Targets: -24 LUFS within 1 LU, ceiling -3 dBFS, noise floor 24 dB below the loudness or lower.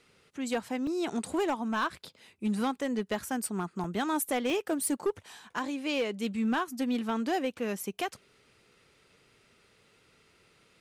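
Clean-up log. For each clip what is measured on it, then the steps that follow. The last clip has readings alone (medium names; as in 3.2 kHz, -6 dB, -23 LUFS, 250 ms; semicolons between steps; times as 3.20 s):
clipped samples 1.2%; clipping level -23.5 dBFS; dropouts 3; longest dropout 1.8 ms; loudness -32.0 LUFS; peak level -23.5 dBFS; loudness target -24.0 LUFS
-> clip repair -23.5 dBFS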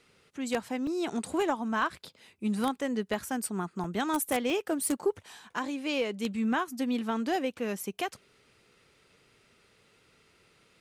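clipped samples 0.0%; dropouts 3; longest dropout 1.8 ms
-> interpolate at 0.87/3.84/4.50 s, 1.8 ms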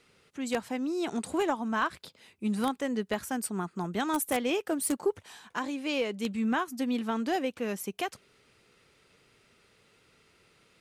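dropouts 0; loudness -31.5 LUFS; peak level -14.5 dBFS; loudness target -24.0 LUFS
-> trim +7.5 dB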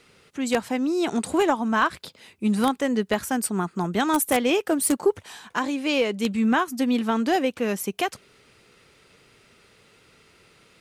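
loudness -24.0 LUFS; peak level -7.0 dBFS; noise floor -58 dBFS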